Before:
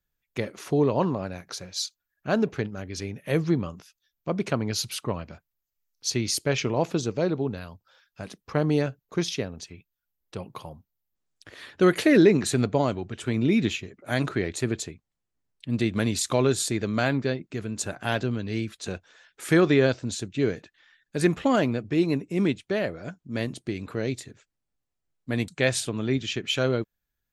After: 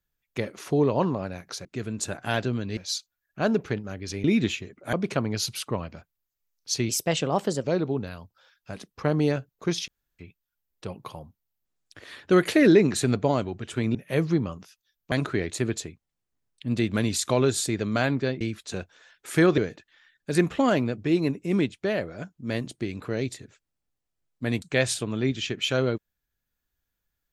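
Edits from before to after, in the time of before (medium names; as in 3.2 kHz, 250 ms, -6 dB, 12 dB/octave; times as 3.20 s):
3.12–4.29 s: swap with 13.45–14.14 s
6.25–7.14 s: speed 119%
9.38–9.69 s: room tone
17.43–18.55 s: move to 1.65 s
19.72–20.44 s: delete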